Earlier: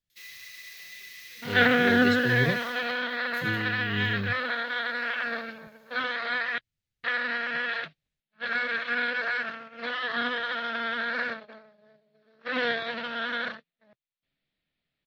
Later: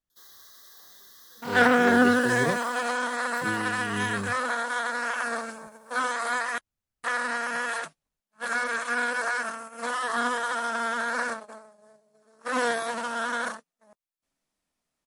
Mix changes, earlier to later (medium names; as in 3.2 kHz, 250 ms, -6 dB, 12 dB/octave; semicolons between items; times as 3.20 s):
first sound: add Chebyshev band-stop 1.7–3.4 kHz, order 3; second sound: remove steep low-pass 4 kHz 36 dB/octave; master: add graphic EQ 125/250/1000/2000/4000 Hz -8/+3/+11/-5/-6 dB